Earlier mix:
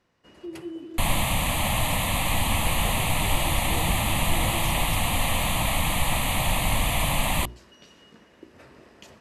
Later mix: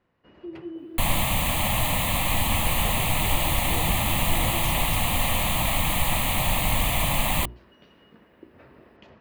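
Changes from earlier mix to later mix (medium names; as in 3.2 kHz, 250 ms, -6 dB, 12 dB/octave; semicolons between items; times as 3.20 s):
first sound: add distance through air 320 m; master: remove brick-wall FIR low-pass 13 kHz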